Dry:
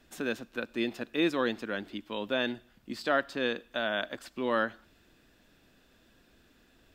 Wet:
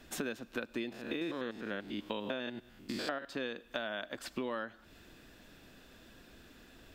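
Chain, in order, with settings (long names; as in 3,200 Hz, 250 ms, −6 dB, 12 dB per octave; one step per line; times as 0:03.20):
0:00.92–0:03.25: spectrum averaged block by block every 100 ms
downward compressor 12 to 1, threshold −40 dBFS, peak gain reduction 17.5 dB
level +6 dB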